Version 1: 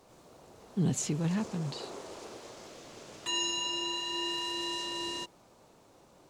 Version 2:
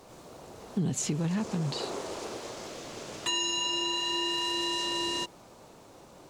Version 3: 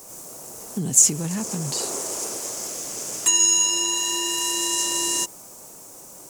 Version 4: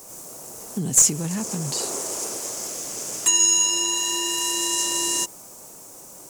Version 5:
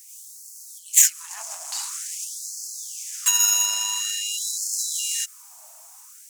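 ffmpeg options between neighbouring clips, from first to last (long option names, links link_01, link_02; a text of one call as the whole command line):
ffmpeg -i in.wav -af "acompressor=threshold=-35dB:ratio=4,volume=7.5dB" out.wav
ffmpeg -i in.wav -af "aexciter=amount=5.7:drive=8.6:freq=5700,equalizer=frequency=71:width_type=o:width=0.95:gain=-8,volume=2.5dB" out.wav
ffmpeg -i in.wav -af "aeval=exprs='clip(val(0),-1,0.355)':channel_layout=same" out.wav
ffmpeg -i in.wav -af "aeval=exprs='0.841*(cos(1*acos(clip(val(0)/0.841,-1,1)))-cos(1*PI/2))+0.211*(cos(4*acos(clip(val(0)/0.841,-1,1)))-cos(4*PI/2))+0.0335*(cos(7*acos(clip(val(0)/0.841,-1,1)))-cos(7*PI/2))':channel_layout=same,afftfilt=real='re*gte(b*sr/1024,580*pow(4200/580,0.5+0.5*sin(2*PI*0.48*pts/sr)))':imag='im*gte(b*sr/1024,580*pow(4200/580,0.5+0.5*sin(2*PI*0.48*pts/sr)))':win_size=1024:overlap=0.75" out.wav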